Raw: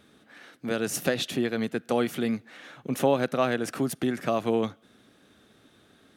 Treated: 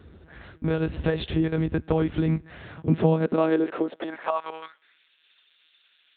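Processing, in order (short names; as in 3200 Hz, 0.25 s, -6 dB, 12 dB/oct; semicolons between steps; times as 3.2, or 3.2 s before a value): tilt -2.5 dB/oct; compressor 2:1, threshold -26 dBFS, peak gain reduction 7 dB; monotone LPC vocoder at 8 kHz 160 Hz; high-pass sweep 64 Hz -> 2800 Hz, 2.39–5.11; gain +4.5 dB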